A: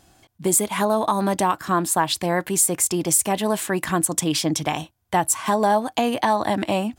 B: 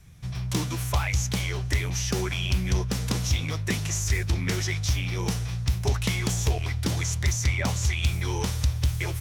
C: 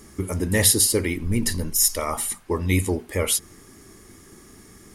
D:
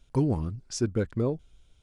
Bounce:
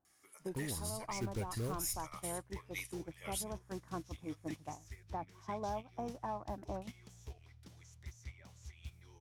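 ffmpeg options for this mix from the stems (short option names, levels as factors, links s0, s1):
-filter_complex "[0:a]lowpass=f=1400:w=0.5412,lowpass=f=1400:w=1.3066,lowshelf=f=100:g=-5.5,volume=0.299,asplit=2[s0][s1];[1:a]adelay=800,volume=0.2[s2];[2:a]highpass=1200,adelay=50,volume=0.596[s3];[3:a]acrusher=bits=4:mode=log:mix=0:aa=0.000001,asubboost=boost=9.5:cutoff=100,adelay=400,volume=0.335[s4];[s1]apad=whole_len=220487[s5];[s3][s5]sidechaincompress=threshold=0.0251:ratio=8:attack=27:release=103[s6];[s0][s2][s6]amix=inputs=3:normalize=0,asoftclip=type=tanh:threshold=0.158,acompressor=threshold=0.00631:ratio=2,volume=1[s7];[s4][s7]amix=inputs=2:normalize=0,agate=range=0.2:threshold=0.01:ratio=16:detection=peak,alimiter=level_in=1.88:limit=0.0631:level=0:latency=1:release=475,volume=0.531"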